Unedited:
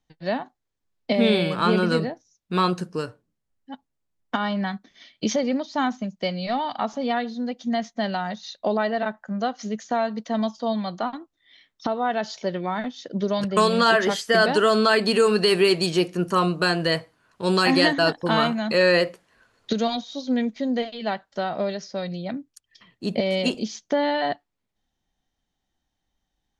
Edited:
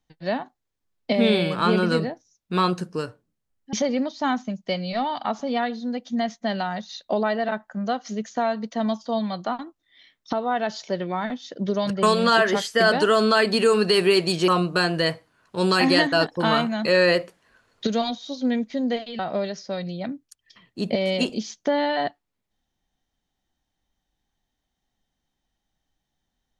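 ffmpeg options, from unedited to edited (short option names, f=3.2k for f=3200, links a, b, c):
-filter_complex "[0:a]asplit=4[a][b][c][d];[a]atrim=end=3.732[e];[b]atrim=start=5.268:end=16.022[f];[c]atrim=start=16.338:end=21.052[g];[d]atrim=start=21.438[h];[e][f]acrossfade=d=0.004:c1=hsin:c2=hsin[i];[i][g]acrossfade=d=0.004:c1=hsin:c2=hsin[j];[j][h]acrossfade=d=0.004:c1=hsin:c2=hsin"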